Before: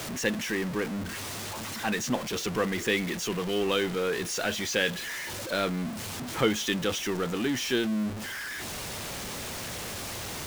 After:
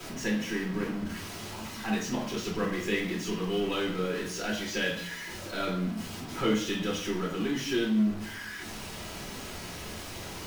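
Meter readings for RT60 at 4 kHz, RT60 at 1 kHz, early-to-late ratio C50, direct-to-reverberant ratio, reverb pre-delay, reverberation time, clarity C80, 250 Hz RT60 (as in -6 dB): 0.55 s, 0.65 s, 4.5 dB, -4.0 dB, 3 ms, 0.65 s, 8.5 dB, 0.90 s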